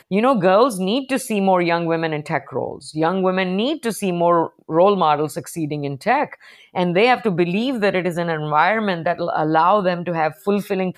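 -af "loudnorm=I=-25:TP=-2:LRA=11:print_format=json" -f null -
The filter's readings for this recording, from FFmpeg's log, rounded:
"input_i" : "-19.2",
"input_tp" : "-2.8",
"input_lra" : "1.6",
"input_thresh" : "-29.3",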